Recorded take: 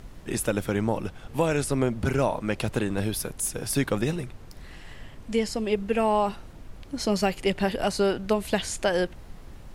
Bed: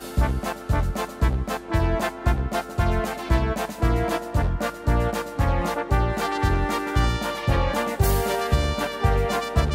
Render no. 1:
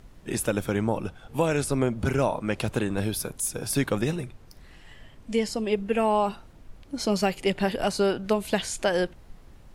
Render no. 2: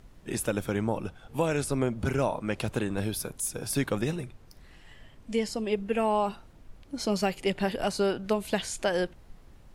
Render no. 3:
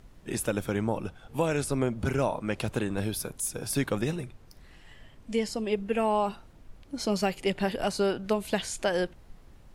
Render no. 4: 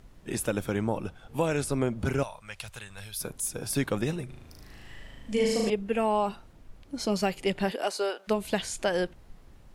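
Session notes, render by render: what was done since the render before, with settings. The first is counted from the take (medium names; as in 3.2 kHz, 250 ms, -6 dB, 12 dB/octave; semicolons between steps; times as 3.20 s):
noise print and reduce 6 dB
trim -3 dB
no audible change
2.23–3.21 s: amplifier tone stack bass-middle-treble 10-0-10; 4.25–5.70 s: flutter echo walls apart 6.5 m, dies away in 1.2 s; 7.70–8.27 s: high-pass 250 Hz -> 570 Hz 24 dB/octave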